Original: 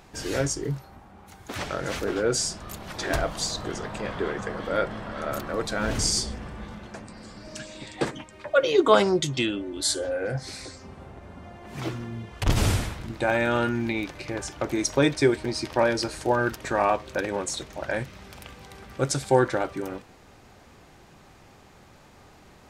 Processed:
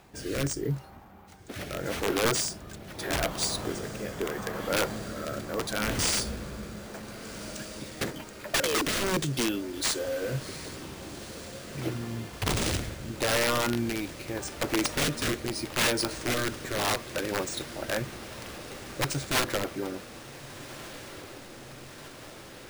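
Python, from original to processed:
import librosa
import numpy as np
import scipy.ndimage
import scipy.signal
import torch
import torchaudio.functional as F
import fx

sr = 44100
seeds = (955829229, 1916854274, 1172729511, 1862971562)

y = fx.highpass(x, sr, hz=45.0, slope=6)
y = (np.mod(10.0 ** (18.0 / 20.0) * y + 1.0, 2.0) - 1.0) / 10.0 ** (18.0 / 20.0)
y = fx.rotary_switch(y, sr, hz=0.8, then_hz=6.3, switch_at_s=16.83)
y = fx.echo_diffused(y, sr, ms=1542, feedback_pct=72, wet_db=-15)
y = np.repeat(y[::3], 3)[:len(y)]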